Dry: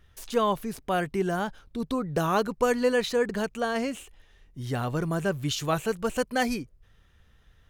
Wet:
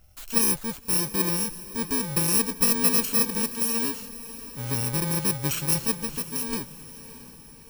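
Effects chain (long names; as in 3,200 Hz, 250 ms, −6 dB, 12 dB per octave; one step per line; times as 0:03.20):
samples in bit-reversed order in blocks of 64 samples
0:05.96–0:06.53: downward compressor 3 to 1, threshold −31 dBFS, peak gain reduction 8.5 dB
feedback delay with all-pass diffusion 623 ms, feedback 52%, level −15.5 dB
level +2 dB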